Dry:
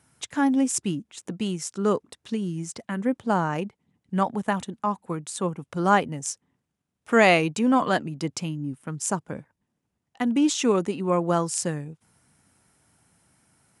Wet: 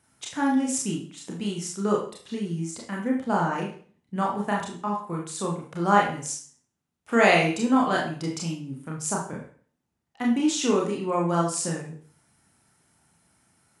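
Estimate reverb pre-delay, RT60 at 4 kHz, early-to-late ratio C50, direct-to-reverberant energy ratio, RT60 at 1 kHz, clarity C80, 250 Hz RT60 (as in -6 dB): 28 ms, 0.45 s, 5.0 dB, -2.0 dB, 0.45 s, 10.0 dB, 0.50 s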